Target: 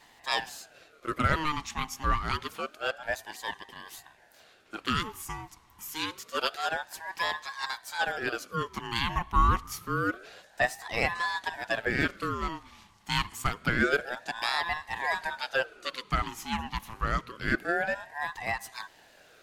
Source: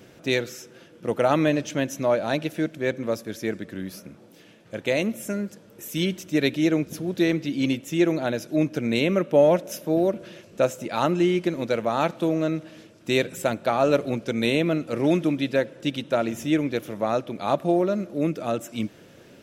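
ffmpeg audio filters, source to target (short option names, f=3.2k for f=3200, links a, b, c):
-af "highpass=510,aeval=exprs='val(0)*sin(2*PI*950*n/s+950*0.45/0.27*sin(2*PI*0.27*n/s))':c=same"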